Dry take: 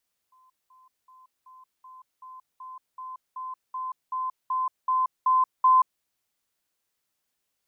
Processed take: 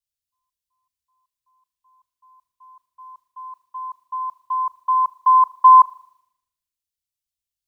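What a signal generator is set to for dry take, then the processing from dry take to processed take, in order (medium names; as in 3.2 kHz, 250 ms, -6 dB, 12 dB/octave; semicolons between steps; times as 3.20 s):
level ladder 1.03 kHz -56.5 dBFS, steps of 3 dB, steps 15, 0.18 s 0.20 s
in parallel at -1 dB: compression, threshold -32 dBFS; on the sum: spring tank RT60 1.3 s, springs 38 ms, DRR 16.5 dB; three bands expanded up and down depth 100%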